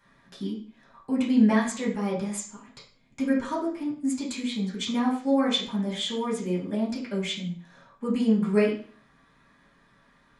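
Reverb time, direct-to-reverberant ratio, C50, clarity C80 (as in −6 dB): 0.45 s, −8.0 dB, 6.5 dB, 10.5 dB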